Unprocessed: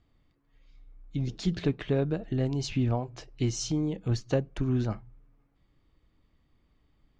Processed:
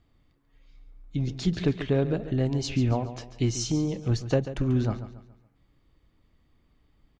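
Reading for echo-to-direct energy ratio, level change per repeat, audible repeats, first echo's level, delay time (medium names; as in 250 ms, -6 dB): -12.0 dB, -8.5 dB, 3, -12.5 dB, 140 ms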